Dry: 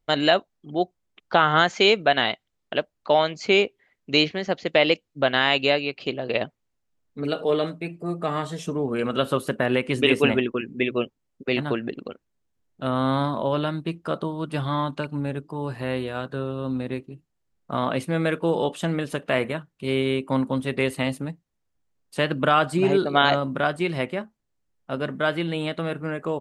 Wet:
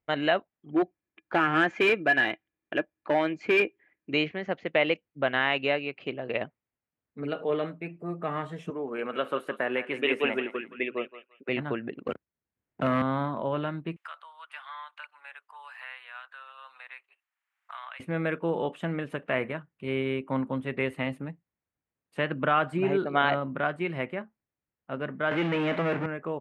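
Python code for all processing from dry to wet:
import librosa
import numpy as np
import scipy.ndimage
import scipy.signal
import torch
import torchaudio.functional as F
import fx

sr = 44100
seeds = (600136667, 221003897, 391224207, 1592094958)

y = fx.chain(x, sr, fx.small_body(hz=(320.0, 1700.0, 2400.0), ring_ms=65, db=13),
    fx.clip_hard(threshold_db=-12.5), at=(0.73, 4.14))
y = fx.chain(y, sr, fx.highpass(hz=310.0, slope=12),
    fx.echo_thinned(ms=170, feedback_pct=29, hz=1000.0, wet_db=-9.5), at=(8.7, 11.49))
y = fx.chain(y, sr, fx.leveller(passes=3),
    fx.band_squash(depth_pct=40), at=(12.07, 13.02))
y = fx.chain(y, sr, fx.bessel_highpass(hz=1500.0, order=6),
    fx.band_squash(depth_pct=70), at=(13.96, 18.0))
y = fx.chain(y, sr, fx.power_curve(exponent=0.35),
    fx.bandpass_edges(low_hz=170.0, high_hz=4700.0), at=(25.31, 26.06))
y = scipy.signal.sosfilt(scipy.signal.butter(2, 68.0, 'highpass', fs=sr, output='sos'), y)
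y = fx.high_shelf_res(y, sr, hz=3300.0, db=-12.5, q=1.5)
y = F.gain(torch.from_numpy(y), -6.0).numpy()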